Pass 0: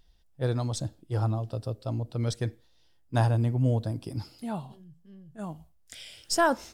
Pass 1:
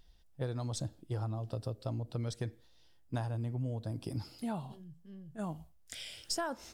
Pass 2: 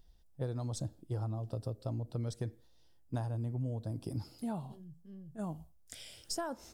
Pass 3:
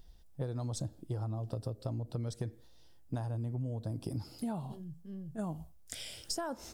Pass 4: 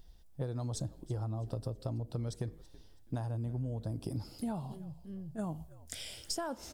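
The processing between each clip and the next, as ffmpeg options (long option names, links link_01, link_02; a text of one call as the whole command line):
ffmpeg -i in.wav -af "acompressor=threshold=-33dB:ratio=8" out.wav
ffmpeg -i in.wav -af "equalizer=frequency=2500:width_type=o:width=2.2:gain=-7.5" out.wav
ffmpeg -i in.wav -af "acompressor=threshold=-41dB:ratio=3,volume=6dB" out.wav
ffmpeg -i in.wav -filter_complex "[0:a]asplit=4[link_01][link_02][link_03][link_04];[link_02]adelay=327,afreqshift=-74,volume=-19dB[link_05];[link_03]adelay=654,afreqshift=-148,volume=-28.1dB[link_06];[link_04]adelay=981,afreqshift=-222,volume=-37.2dB[link_07];[link_01][link_05][link_06][link_07]amix=inputs=4:normalize=0" out.wav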